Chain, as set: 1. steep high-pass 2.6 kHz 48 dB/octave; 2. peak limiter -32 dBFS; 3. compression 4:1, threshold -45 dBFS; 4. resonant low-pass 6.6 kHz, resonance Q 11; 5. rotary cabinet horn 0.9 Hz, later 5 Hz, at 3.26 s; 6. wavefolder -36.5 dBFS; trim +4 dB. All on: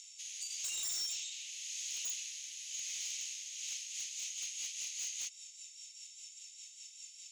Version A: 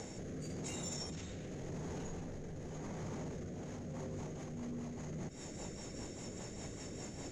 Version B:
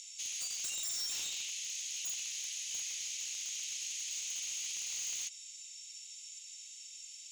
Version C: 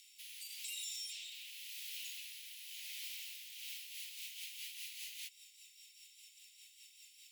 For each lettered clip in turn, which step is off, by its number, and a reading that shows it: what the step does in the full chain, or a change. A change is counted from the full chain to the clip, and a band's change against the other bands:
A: 1, momentary loudness spread change -9 LU; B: 5, crest factor change -2.0 dB; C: 4, crest factor change +6.0 dB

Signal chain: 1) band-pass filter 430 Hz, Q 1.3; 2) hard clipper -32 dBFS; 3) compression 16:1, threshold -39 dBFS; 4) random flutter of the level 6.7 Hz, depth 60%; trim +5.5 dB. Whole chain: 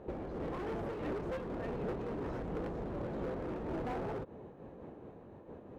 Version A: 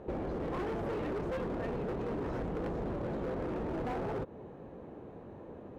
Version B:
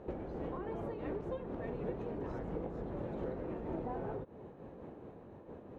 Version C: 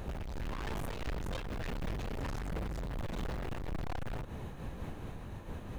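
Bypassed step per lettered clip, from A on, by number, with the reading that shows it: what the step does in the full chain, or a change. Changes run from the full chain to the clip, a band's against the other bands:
4, loudness change +3.0 LU; 2, distortion -9 dB; 1, 4 kHz band +11.0 dB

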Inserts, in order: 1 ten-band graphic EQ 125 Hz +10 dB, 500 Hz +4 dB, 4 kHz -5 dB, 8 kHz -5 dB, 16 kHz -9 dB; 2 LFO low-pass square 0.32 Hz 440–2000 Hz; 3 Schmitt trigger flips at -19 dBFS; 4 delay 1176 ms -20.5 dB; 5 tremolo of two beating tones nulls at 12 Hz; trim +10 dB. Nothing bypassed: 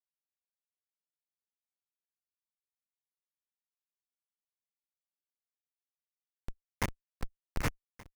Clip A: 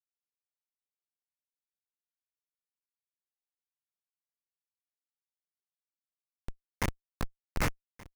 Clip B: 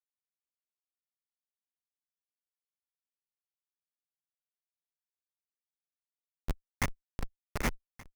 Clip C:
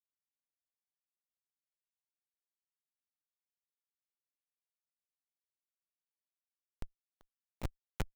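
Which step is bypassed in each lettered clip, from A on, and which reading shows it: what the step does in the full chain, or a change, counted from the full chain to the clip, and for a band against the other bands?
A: 5, momentary loudness spread change +2 LU; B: 1, momentary loudness spread change -7 LU; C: 2, 125 Hz band +4.5 dB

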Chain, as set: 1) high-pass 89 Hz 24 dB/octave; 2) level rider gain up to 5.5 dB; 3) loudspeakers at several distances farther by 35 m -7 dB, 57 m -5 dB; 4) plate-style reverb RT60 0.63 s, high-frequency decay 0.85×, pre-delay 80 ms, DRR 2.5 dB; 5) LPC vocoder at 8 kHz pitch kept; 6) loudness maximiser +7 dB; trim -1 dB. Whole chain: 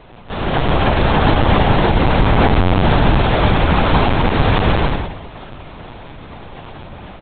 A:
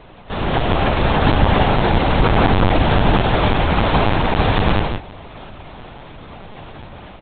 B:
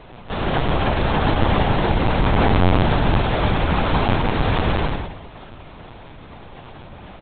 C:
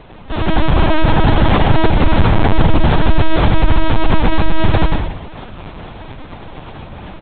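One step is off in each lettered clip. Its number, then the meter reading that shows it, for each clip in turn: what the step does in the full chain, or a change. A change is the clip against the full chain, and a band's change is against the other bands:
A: 4, momentary loudness spread change -15 LU; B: 2, crest factor change +4.5 dB; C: 1, 125 Hz band +2.0 dB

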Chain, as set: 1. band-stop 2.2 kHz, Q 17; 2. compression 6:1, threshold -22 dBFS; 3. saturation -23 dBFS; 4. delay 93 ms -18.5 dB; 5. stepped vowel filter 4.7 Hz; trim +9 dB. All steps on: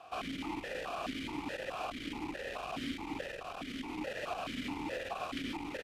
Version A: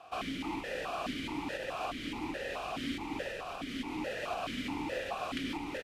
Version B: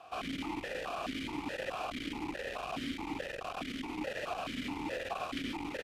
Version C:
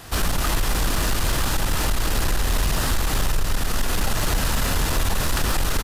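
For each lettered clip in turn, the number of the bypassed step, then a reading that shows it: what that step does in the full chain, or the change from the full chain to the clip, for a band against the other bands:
3, distortion -15 dB; 2, mean gain reduction 2.0 dB; 5, 8 kHz band +16.0 dB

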